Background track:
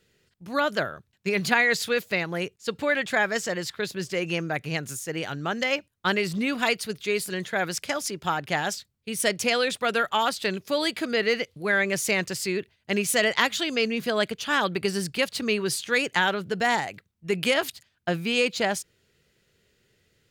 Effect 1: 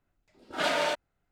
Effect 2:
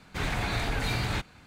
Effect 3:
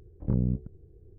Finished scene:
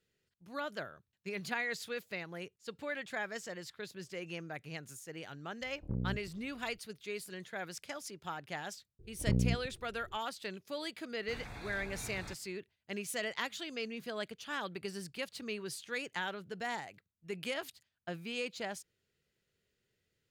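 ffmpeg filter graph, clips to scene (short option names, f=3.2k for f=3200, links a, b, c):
-filter_complex "[3:a]asplit=2[a][b];[0:a]volume=-15dB[c];[2:a]asuperstop=centerf=3000:order=4:qfactor=7.4[d];[a]atrim=end=1.18,asetpts=PTS-STARTPTS,volume=-10.5dB,afade=t=in:d=0.004:c=hsin,afade=t=out:st=1.176:d=0.004:c=hsin,adelay=247401S[e];[b]atrim=end=1.18,asetpts=PTS-STARTPTS,volume=-4dB,afade=t=in:d=0.004:c=hsin,afade=t=out:st=1.176:d=0.004:c=hsin,adelay=8990[f];[d]atrim=end=1.46,asetpts=PTS-STARTPTS,volume=-17dB,afade=t=in:d=0.004:c=hsin,afade=t=out:st=1.456:d=0.004:c=hsin,adelay=11130[g];[c][e][f][g]amix=inputs=4:normalize=0"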